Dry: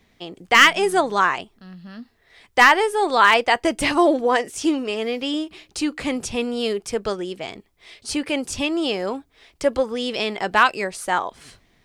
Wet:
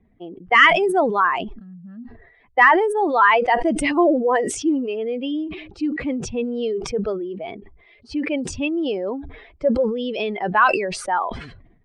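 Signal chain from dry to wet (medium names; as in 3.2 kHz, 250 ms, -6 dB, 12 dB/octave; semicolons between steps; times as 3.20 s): spectral contrast enhancement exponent 1.8; level-controlled noise filter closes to 1.3 kHz, open at -15.5 dBFS; decay stretcher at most 64 dB/s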